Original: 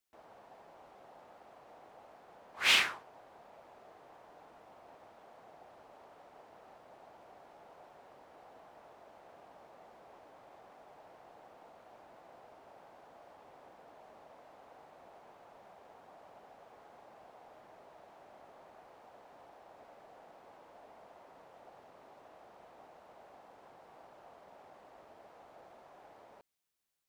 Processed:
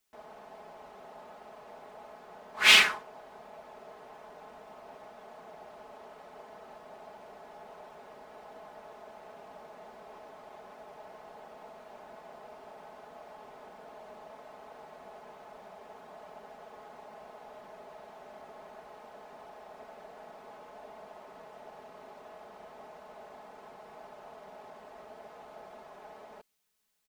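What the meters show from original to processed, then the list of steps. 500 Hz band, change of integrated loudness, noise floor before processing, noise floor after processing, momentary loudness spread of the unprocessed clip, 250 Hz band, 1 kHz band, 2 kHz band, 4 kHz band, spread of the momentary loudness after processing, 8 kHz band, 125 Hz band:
+8.0 dB, +7.5 dB, -59 dBFS, -52 dBFS, 8 LU, +7.0 dB, +7.0 dB, +8.0 dB, +7.5 dB, 8 LU, +7.5 dB, +5.5 dB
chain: comb 4.7 ms; gain +6 dB

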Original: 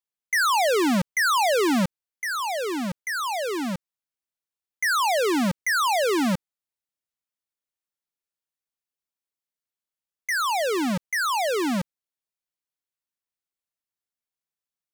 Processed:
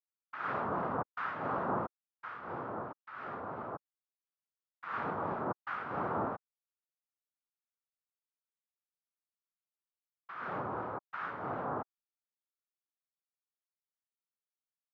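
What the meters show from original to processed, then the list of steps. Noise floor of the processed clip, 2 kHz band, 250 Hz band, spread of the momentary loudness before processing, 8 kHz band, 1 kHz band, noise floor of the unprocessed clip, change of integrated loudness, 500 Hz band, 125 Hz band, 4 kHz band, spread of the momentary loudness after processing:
under -85 dBFS, -18.0 dB, -17.5 dB, 9 LU, under -40 dB, -11.5 dB, under -85 dBFS, -14.5 dB, -14.5 dB, -11.0 dB, under -30 dB, 11 LU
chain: harmonic tremolo 2.9 Hz, depth 50%, crossover 470 Hz; noise vocoder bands 2; ladder low-pass 1500 Hz, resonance 60%; gain -2.5 dB

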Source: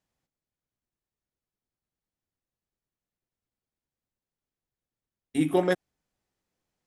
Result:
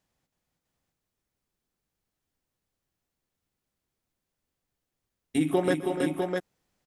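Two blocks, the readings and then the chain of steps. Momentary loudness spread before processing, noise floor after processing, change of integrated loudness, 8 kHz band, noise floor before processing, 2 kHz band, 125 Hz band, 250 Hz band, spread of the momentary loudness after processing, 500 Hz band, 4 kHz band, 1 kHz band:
8 LU, under -85 dBFS, -1.0 dB, +4.0 dB, under -85 dBFS, +1.0 dB, +1.0 dB, +1.5 dB, 6 LU, +1.0 dB, +2.0 dB, +1.0 dB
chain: compressor 2.5:1, threshold -28 dBFS, peak gain reduction 7.5 dB; tapped delay 0.123/0.294/0.324/0.513/0.653 s -19.5/-13/-5/-13.5/-4 dB; gain +4.5 dB

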